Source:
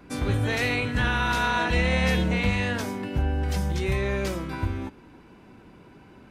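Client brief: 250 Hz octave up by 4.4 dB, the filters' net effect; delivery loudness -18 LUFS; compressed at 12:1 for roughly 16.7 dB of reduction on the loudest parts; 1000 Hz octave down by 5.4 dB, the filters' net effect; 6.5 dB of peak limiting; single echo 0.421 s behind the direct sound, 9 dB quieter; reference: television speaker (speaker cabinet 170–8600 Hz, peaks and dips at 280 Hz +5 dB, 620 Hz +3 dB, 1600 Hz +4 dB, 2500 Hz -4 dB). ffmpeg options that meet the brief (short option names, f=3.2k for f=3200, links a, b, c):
-af "equalizer=f=250:t=o:g=4.5,equalizer=f=1k:t=o:g=-8.5,acompressor=threshold=-36dB:ratio=12,alimiter=level_in=9dB:limit=-24dB:level=0:latency=1,volume=-9dB,highpass=f=170:w=0.5412,highpass=f=170:w=1.3066,equalizer=f=280:t=q:w=4:g=5,equalizer=f=620:t=q:w=4:g=3,equalizer=f=1.6k:t=q:w=4:g=4,equalizer=f=2.5k:t=q:w=4:g=-4,lowpass=f=8.6k:w=0.5412,lowpass=f=8.6k:w=1.3066,aecho=1:1:421:0.355,volume=24.5dB"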